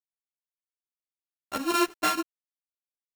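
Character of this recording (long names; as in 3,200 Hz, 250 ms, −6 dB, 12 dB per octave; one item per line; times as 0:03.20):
a buzz of ramps at a fixed pitch in blocks of 32 samples
chopped level 6.9 Hz, depth 65%, duty 80%
a quantiser's noise floor 8 bits, dither none
a shimmering, thickened sound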